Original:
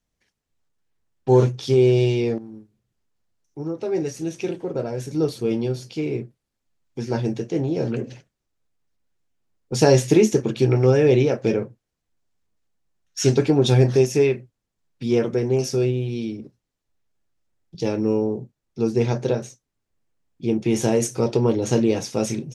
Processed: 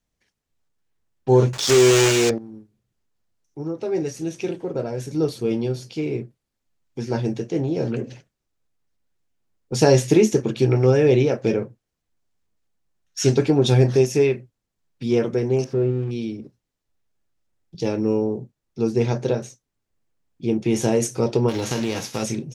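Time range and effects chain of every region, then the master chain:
1.53–2.31 s: block-companded coder 3-bit + peaking EQ 6.9 kHz +11 dB 0.9 oct + overdrive pedal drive 16 dB, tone 3.5 kHz, clips at -4.5 dBFS
15.64–16.11 s: zero-crossing glitches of -18.5 dBFS + low-pass 1.2 kHz
21.48–22.22 s: formants flattened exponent 0.6 + peaking EQ 8.7 kHz -8 dB 0.24 oct + compression 4:1, threshold -20 dBFS
whole clip: none

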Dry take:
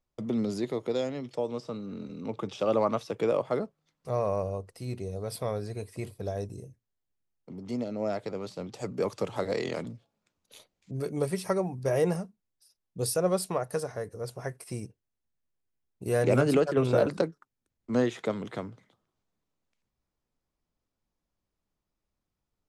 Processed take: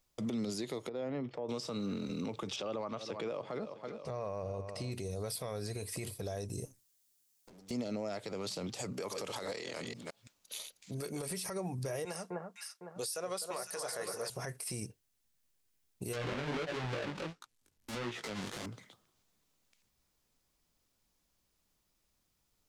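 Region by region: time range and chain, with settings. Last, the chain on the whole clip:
0.89–1.49 s: low-pass 1.5 kHz + compression 2.5:1, threshold -39 dBFS
2.56–4.92 s: distance through air 110 m + feedback delay 327 ms, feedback 40%, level -18.5 dB
6.65–7.71 s: comb filter that takes the minimum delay 9.8 ms + compression 5:1, threshold -58 dBFS + tone controls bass -4 dB, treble +10 dB
8.93–11.31 s: chunks repeated in reverse 168 ms, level -9.5 dB + bass shelf 320 Hz -7 dB + compression 3:1, threshold -40 dBFS
12.05–14.30 s: frequency weighting A + echo whose repeats swap between lows and highs 253 ms, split 1.5 kHz, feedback 58%, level -7.5 dB
16.13–18.66 s: square wave that keeps the level + low-pass that closes with the level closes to 2.7 kHz, closed at -18.5 dBFS + chorus 1.5 Hz, delay 16.5 ms, depth 4.4 ms
whole clip: treble shelf 2.2 kHz +11.5 dB; compression 6:1, threshold -34 dBFS; peak limiter -32.5 dBFS; trim +3 dB

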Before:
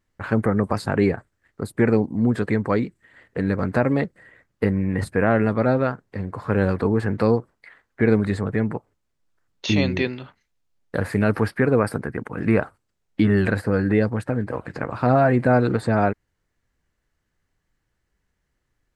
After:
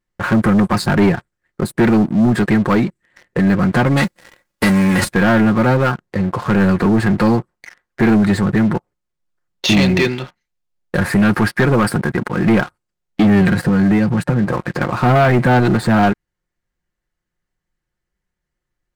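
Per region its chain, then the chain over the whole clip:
3.96–5.12 s: formants flattened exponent 0.6 + comb 3.6 ms, depth 33%
13.41–14.53 s: peaking EQ 160 Hz +12.5 dB 0.34 oct + compression 2:1, threshold -21 dBFS
whole clip: comb 5.6 ms, depth 46%; dynamic bell 530 Hz, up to -7 dB, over -33 dBFS, Q 1.8; waveshaping leveller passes 3

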